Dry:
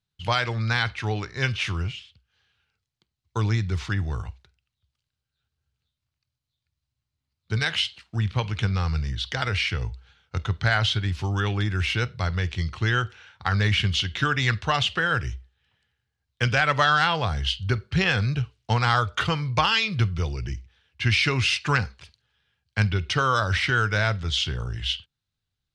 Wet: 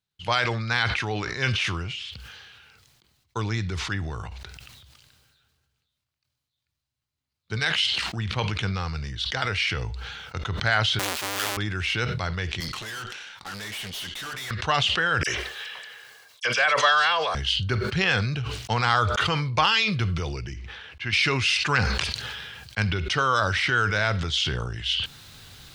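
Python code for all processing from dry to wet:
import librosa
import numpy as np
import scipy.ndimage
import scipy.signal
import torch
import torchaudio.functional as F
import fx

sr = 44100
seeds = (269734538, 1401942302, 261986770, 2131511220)

y = fx.chain(x, sr, fx.halfwave_hold(),
    fx.highpass(hz=1400.0, slope=6),
    fx.env_flatten(amount_pct=50), at=(10.99, 11.57))
y = fx.chain(y, sr, fx.highpass(hz=140.0, slope=12),
    fx.high_shelf(hz=2300.0, db=11.5),
    fx.tube_stage(drive_db=33.0, bias=0.7), at=(12.6, 14.51))
y = fx.chain(y, sr, fx.highpass(hz=470.0, slope=12),
    fx.comb(ms=1.8, depth=0.34),
    fx.dispersion(late='lows', ms=43.0, hz=2800.0), at=(15.23, 17.35))
y = fx.chain(y, sr, fx.lowpass(hz=1800.0, slope=6),
    fx.low_shelf(hz=440.0, db=-7.0), at=(20.54, 21.13))
y = fx.low_shelf(y, sr, hz=150.0, db=-9.5)
y = fx.sustainer(y, sr, db_per_s=27.0)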